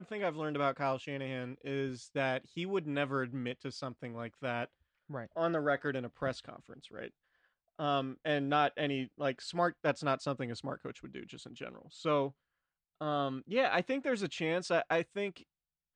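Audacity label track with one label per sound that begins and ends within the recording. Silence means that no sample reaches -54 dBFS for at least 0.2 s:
5.090000	7.100000	sound
7.790000	12.310000	sound
13.010000	15.430000	sound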